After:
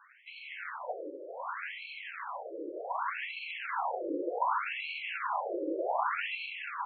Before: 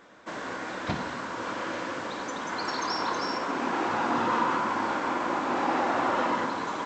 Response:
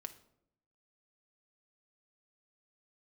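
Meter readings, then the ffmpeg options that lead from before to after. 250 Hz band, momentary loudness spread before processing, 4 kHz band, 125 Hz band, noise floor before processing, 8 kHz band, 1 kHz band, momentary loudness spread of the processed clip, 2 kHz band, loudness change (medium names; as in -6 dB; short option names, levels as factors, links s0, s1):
-11.0 dB, 8 LU, -7.0 dB, under -40 dB, -37 dBFS, under -35 dB, -7.0 dB, 10 LU, -5.0 dB, -6.5 dB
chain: -af "acrusher=samples=12:mix=1:aa=0.000001,afftfilt=real='re*between(b*sr/1024,410*pow(3100/410,0.5+0.5*sin(2*PI*0.66*pts/sr))/1.41,410*pow(3100/410,0.5+0.5*sin(2*PI*0.66*pts/sr))*1.41)':imag='im*between(b*sr/1024,410*pow(3100/410,0.5+0.5*sin(2*PI*0.66*pts/sr))/1.41,410*pow(3100/410,0.5+0.5*sin(2*PI*0.66*pts/sr))*1.41)':win_size=1024:overlap=0.75"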